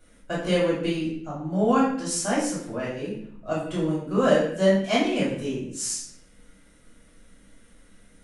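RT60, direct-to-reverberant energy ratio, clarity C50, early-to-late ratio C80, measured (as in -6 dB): 0.65 s, -9.5 dB, 2.0 dB, 6.5 dB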